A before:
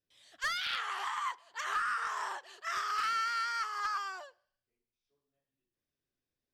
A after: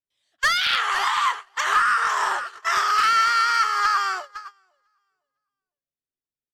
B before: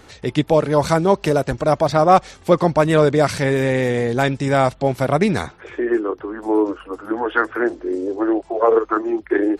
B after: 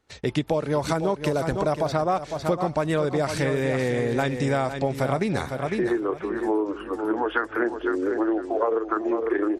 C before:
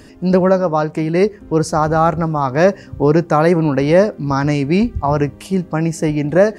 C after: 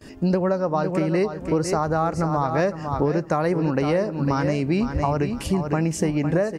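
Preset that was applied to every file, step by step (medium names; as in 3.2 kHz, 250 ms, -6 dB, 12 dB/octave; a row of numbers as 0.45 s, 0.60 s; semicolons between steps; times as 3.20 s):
on a send: feedback delay 504 ms, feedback 21%, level -10 dB; on the sum: gate -42 dBFS, range -25 dB; compression 10:1, threshold -19 dBFS; peak normalisation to -9 dBFS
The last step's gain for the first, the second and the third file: +13.5 dB, -1.0 dB, +1.0 dB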